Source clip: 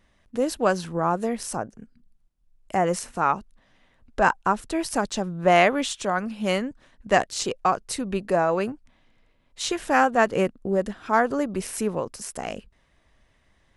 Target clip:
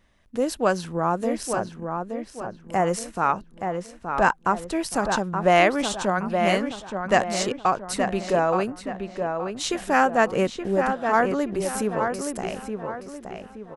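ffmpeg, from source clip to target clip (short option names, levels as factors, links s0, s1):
-filter_complex "[0:a]asplit=2[s0][s1];[s1]adelay=873,lowpass=f=2700:p=1,volume=0.531,asplit=2[s2][s3];[s3]adelay=873,lowpass=f=2700:p=1,volume=0.4,asplit=2[s4][s5];[s5]adelay=873,lowpass=f=2700:p=1,volume=0.4,asplit=2[s6][s7];[s7]adelay=873,lowpass=f=2700:p=1,volume=0.4,asplit=2[s8][s9];[s9]adelay=873,lowpass=f=2700:p=1,volume=0.4[s10];[s0][s2][s4][s6][s8][s10]amix=inputs=6:normalize=0"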